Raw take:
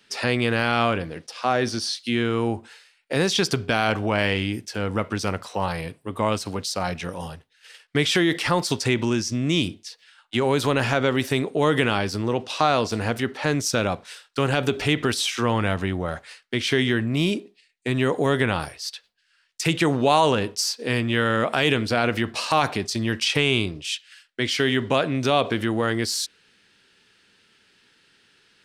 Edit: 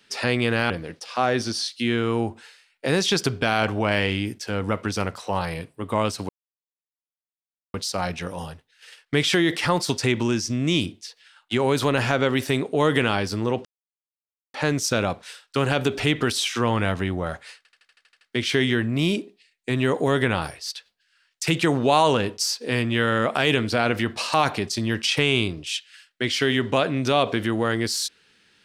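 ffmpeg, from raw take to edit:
ffmpeg -i in.wav -filter_complex "[0:a]asplit=13[link_01][link_02][link_03][link_04][link_05][link_06][link_07][link_08][link_09][link_10][link_11][link_12][link_13];[link_01]atrim=end=0.702[link_14];[link_02]atrim=start=0.968:end=6.56,asetpts=PTS-STARTPTS,afade=type=out:start_time=5.588:duration=0.004:curve=hsin,apad=pad_dur=1.45[link_15];[link_03]atrim=start=6.56:end=12.47,asetpts=PTS-STARTPTS,afade=type=in:duration=0.004:curve=hsin,afade=type=out:start_time=5.906:duration=0.004:curve=hsin[link_16];[link_04]atrim=start=12.47:end=13.36,asetpts=PTS-STARTPTS,volume=0[link_17];[link_05]atrim=start=13.36:end=16.472,asetpts=PTS-STARTPTS,afade=type=in:duration=0.004:curve=hsin[link_18];[link_06]atrim=start=16.388:end=16.472[link_19];[link_07]atrim=start=16.388:end=16.472[link_20];[link_08]atrim=start=16.388:end=16.472[link_21];[link_09]atrim=start=16.388:end=16.472[link_22];[link_10]atrim=start=16.388:end=16.472[link_23];[link_11]atrim=start=16.388:end=16.472[link_24];[link_12]atrim=start=16.388:end=16.472[link_25];[link_13]atrim=start=16.388[link_26];[link_15][link_16][link_17][link_18]concat=n=4:v=0:a=1[link_27];[link_14][link_27]acrossfade=duration=0.004:curve1=hsin:curve2=hsin[link_28];[link_28][link_19]acrossfade=duration=0.004:curve1=hsin:curve2=hsin[link_29];[link_29][link_20]acrossfade=duration=0.004:curve1=hsin:curve2=hsin[link_30];[link_30][link_21]acrossfade=duration=0.004:curve1=hsin:curve2=hsin[link_31];[link_31][link_22]acrossfade=duration=0.004:curve1=hsin:curve2=hsin[link_32];[link_32][link_23]acrossfade=duration=0.004:curve1=hsin:curve2=hsin[link_33];[link_33][link_24]acrossfade=duration=0.004:curve1=hsin:curve2=hsin[link_34];[link_34][link_25]acrossfade=duration=0.004:curve1=hsin:curve2=hsin[link_35];[link_35][link_26]acrossfade=duration=0.004:curve1=hsin:curve2=hsin" out.wav

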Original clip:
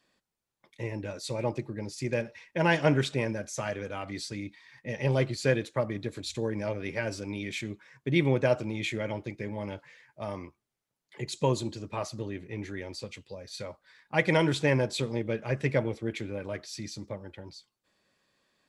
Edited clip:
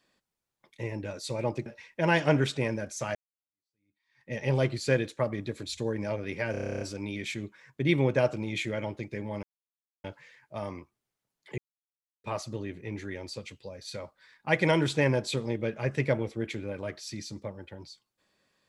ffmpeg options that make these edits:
ffmpeg -i in.wav -filter_complex "[0:a]asplit=16[link_01][link_02][link_03][link_04][link_05][link_06][link_07][link_08][link_09][link_10][link_11][link_12][link_13][link_14][link_15][link_16];[link_01]atrim=end=1.662[link_17];[link_02]atrim=start=2.228:end=3.72,asetpts=PTS-STARTPTS,afade=type=out:start_time=1.488:duration=0.004:curve=hsin[link_18];[link_03]atrim=start=3.72:end=7.112,asetpts=PTS-STARTPTS,afade=type=in:duration=1.17:curve=exp[link_19];[link_04]atrim=start=7.078:end=7.112[link_20];[link_05]atrim=start=7.078:end=7.112[link_21];[link_06]atrim=start=7.078:end=7.112[link_22];[link_07]atrim=start=7.078:end=7.112[link_23];[link_08]atrim=start=7.078:end=7.112[link_24];[link_09]atrim=start=7.078:end=7.112[link_25];[link_10]atrim=start=7.078:end=7.112[link_26];[link_11]atrim=start=7.078:end=7.112[link_27];[link_12]atrim=start=7.078:end=7.112[link_28];[link_13]atrim=start=7.078:end=9.7,asetpts=PTS-STARTPTS,afade=type=out:start_time=2.618:duration=0.004:curve=hsin,apad=pad_dur=0.61[link_29];[link_14]atrim=start=9.7:end=11.24,asetpts=PTS-STARTPTS,afade=type=in:duration=0.004:curve=hsin,afade=type=out:start_time=1.536:duration=0.004:curve=hsin[link_30];[link_15]atrim=start=11.24:end=11.9,asetpts=PTS-STARTPTS,volume=0[link_31];[link_16]atrim=start=11.9,asetpts=PTS-STARTPTS,afade=type=in:duration=0.004:curve=hsin[link_32];[link_18][link_19]concat=n=2:v=0:a=1[link_33];[link_17][link_33]acrossfade=duration=0.004:curve1=hsin:curve2=hsin[link_34];[link_34][link_20]acrossfade=duration=0.004:curve1=hsin:curve2=hsin[link_35];[link_35][link_21]acrossfade=duration=0.004:curve1=hsin:curve2=hsin[link_36];[link_36][link_22]acrossfade=duration=0.004:curve1=hsin:curve2=hsin[link_37];[link_37][link_23]acrossfade=duration=0.004:curve1=hsin:curve2=hsin[link_38];[link_38][link_24]acrossfade=duration=0.004:curve1=hsin:curve2=hsin[link_39];[link_39][link_25]acrossfade=duration=0.004:curve1=hsin:curve2=hsin[link_40];[link_40][link_26]acrossfade=duration=0.004:curve1=hsin:curve2=hsin[link_41];[link_41][link_27]acrossfade=duration=0.004:curve1=hsin:curve2=hsin[link_42];[link_42][link_28]acrossfade=duration=0.004:curve1=hsin:curve2=hsin[link_43];[link_29][link_30][link_31][link_32]concat=n=4:v=0:a=1[link_44];[link_43][link_44]acrossfade=duration=0.004:curve1=hsin:curve2=hsin" out.wav

